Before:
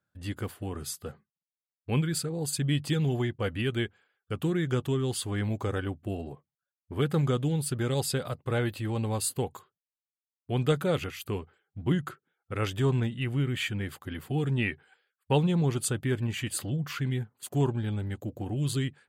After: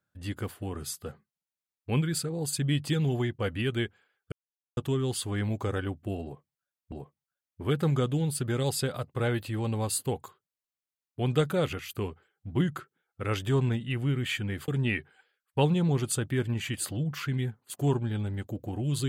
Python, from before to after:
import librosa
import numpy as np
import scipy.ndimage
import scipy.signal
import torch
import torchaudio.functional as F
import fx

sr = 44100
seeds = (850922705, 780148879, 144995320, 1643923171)

y = fx.edit(x, sr, fx.silence(start_s=4.32, length_s=0.45),
    fx.repeat(start_s=6.23, length_s=0.69, count=2),
    fx.cut(start_s=13.99, length_s=0.42), tone=tone)